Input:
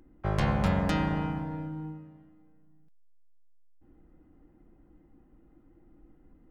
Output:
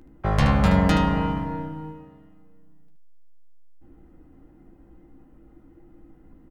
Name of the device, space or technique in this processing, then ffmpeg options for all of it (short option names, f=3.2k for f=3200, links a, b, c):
slapback doubling: -filter_complex "[0:a]asplit=3[a][b][c];[b]adelay=15,volume=-7.5dB[d];[c]adelay=75,volume=-8dB[e];[a][d][e]amix=inputs=3:normalize=0,volume=6.5dB"